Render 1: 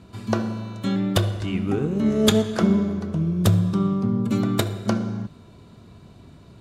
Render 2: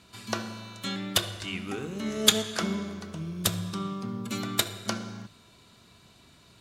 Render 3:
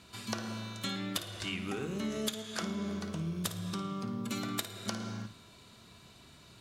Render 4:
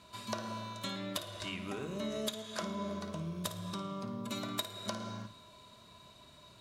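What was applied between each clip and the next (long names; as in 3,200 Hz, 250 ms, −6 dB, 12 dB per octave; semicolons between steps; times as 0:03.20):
tilt shelving filter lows −9 dB, about 1,100 Hz; mains-hum notches 50/100/150 Hz; level −4 dB
downward compressor 16 to 1, threshold −32 dBFS, peak gain reduction 20 dB; on a send: flutter between parallel walls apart 9.4 metres, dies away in 0.28 s
hollow resonant body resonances 610/1,000/3,800 Hz, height 13 dB, ringing for 50 ms; level −4 dB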